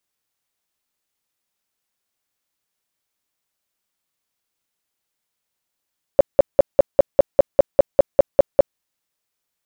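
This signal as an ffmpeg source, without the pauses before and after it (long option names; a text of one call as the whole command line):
ffmpeg -f lavfi -i "aevalsrc='0.596*sin(2*PI*560*mod(t,0.2))*lt(mod(t,0.2),9/560)':duration=2.6:sample_rate=44100" out.wav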